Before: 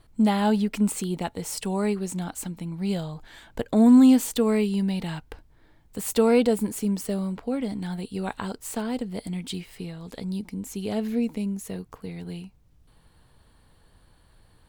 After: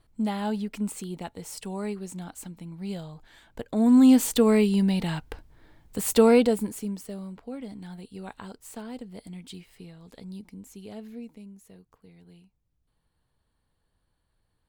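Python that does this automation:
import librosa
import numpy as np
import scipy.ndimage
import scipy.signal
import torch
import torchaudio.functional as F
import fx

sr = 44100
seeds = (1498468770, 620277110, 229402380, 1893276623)

y = fx.gain(x, sr, db=fx.line((3.7, -7.0), (4.25, 2.5), (6.26, 2.5), (7.07, -9.5), (10.49, -9.5), (11.49, -17.0)))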